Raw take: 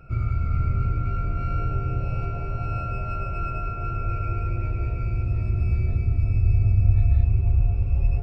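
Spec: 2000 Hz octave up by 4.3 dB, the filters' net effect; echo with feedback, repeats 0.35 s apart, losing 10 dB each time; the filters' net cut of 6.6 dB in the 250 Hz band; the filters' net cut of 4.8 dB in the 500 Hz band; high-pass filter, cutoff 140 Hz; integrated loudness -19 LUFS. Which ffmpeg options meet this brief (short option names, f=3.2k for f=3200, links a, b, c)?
-af "highpass=140,equalizer=f=250:t=o:g=-8.5,equalizer=f=500:t=o:g=-4,equalizer=f=2k:t=o:g=6.5,aecho=1:1:350|700|1050|1400:0.316|0.101|0.0324|0.0104,volume=13.5dB"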